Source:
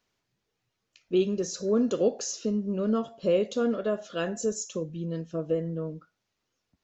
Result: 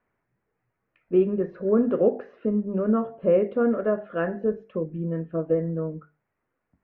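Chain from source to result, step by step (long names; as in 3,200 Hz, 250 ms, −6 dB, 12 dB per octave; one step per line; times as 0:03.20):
Butterworth low-pass 2,100 Hz 36 dB per octave
mains-hum notches 50/100/150/200/250/300/350/400/450 Hz
level +4.5 dB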